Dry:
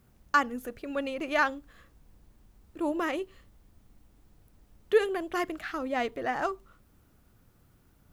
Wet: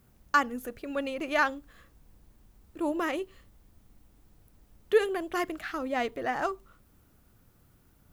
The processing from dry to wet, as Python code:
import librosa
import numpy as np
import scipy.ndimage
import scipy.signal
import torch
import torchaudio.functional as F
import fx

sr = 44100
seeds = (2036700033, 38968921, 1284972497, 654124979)

y = fx.high_shelf(x, sr, hz=9400.0, db=4.5)